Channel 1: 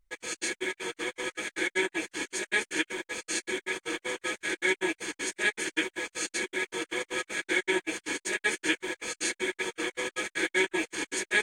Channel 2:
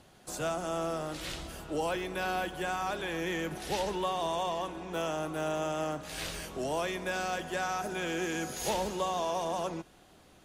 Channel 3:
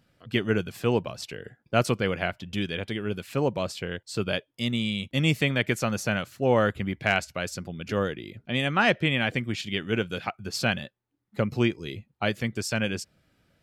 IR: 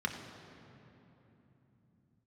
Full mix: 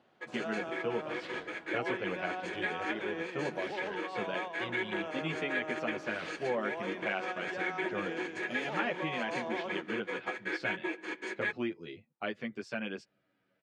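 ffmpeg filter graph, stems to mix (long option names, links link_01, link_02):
-filter_complex "[0:a]flanger=delay=5.1:depth=8.3:regen=-52:speed=0.18:shape=triangular,adelay=100,volume=0dB,asplit=2[link_01][link_02];[link_02]volume=-18dB[link_03];[1:a]alimiter=level_in=4.5dB:limit=-24dB:level=0:latency=1:release=25,volume=-4.5dB,volume=-1dB[link_04];[2:a]asplit=2[link_05][link_06];[link_06]adelay=9.7,afreqshift=-0.33[link_07];[link_05][link_07]amix=inputs=2:normalize=1,volume=-4dB,asplit=2[link_08][link_09];[link_09]apad=whole_len=460545[link_10];[link_04][link_10]sidechaingate=range=-6dB:threshold=-45dB:ratio=16:detection=peak[link_11];[3:a]atrim=start_sample=2205[link_12];[link_03][link_12]afir=irnorm=-1:irlink=0[link_13];[link_01][link_11][link_08][link_13]amix=inputs=4:normalize=0,highpass=230,lowpass=2700,acompressor=threshold=-32dB:ratio=2"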